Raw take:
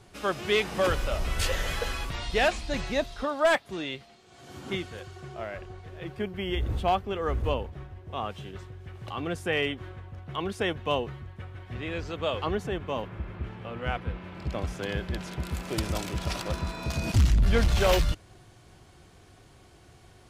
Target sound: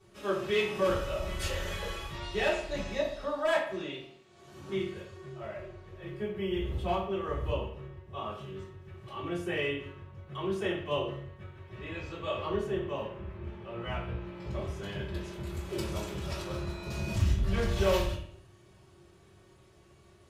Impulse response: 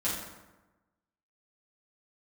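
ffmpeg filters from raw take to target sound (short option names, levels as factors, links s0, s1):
-filter_complex "[0:a]asettb=1/sr,asplit=3[s0][s1][s2];[s0]atrim=end=13.734[s3];[s1]atrim=start=13.73:end=14.51,asetpts=PTS-STARTPTS,afade=t=in:d=0.004:c=qsin,afade=t=out:st=0.776:d=0.004:c=qsin,asplit=2[s4][s5];[s5]adelay=17,volume=0.708[s6];[s4][s6]amix=inputs=2:normalize=0,atrim=end_sample=34398[s7];[s2]atrim=start=14.506[s8];[s3][s7]acrossfade=d=0.004:c1=hsin:c2=qsin[s9];[s9][s8]acrossfade=d=0.004:c1=qsin:c2=hsin[s10];[1:a]atrim=start_sample=2205,asetrate=83790,aresample=44100[s11];[s10][s11]afir=irnorm=-1:irlink=0,volume=0.422"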